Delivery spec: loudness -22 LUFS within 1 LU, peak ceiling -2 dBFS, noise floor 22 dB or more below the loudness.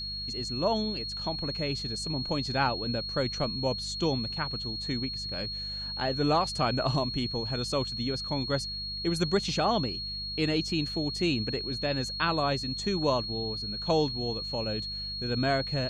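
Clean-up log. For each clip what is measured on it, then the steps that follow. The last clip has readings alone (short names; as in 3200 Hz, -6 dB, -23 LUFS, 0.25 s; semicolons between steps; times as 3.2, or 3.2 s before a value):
hum 50 Hz; harmonics up to 200 Hz; hum level -42 dBFS; steady tone 4300 Hz; tone level -34 dBFS; loudness -29.5 LUFS; peak -13.0 dBFS; loudness target -22.0 LUFS
-> de-hum 50 Hz, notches 4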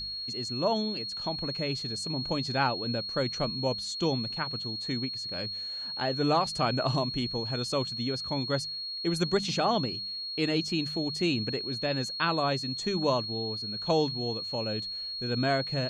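hum none; steady tone 4300 Hz; tone level -34 dBFS
-> notch 4300 Hz, Q 30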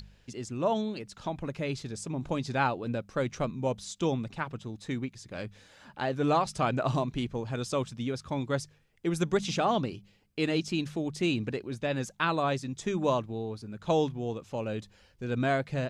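steady tone none; loudness -31.5 LUFS; peak -12.5 dBFS; loudness target -22.0 LUFS
-> gain +9.5 dB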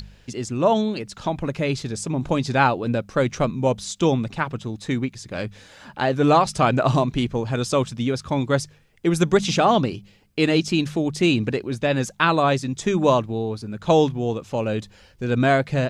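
loudness -22.0 LUFS; peak -3.0 dBFS; noise floor -53 dBFS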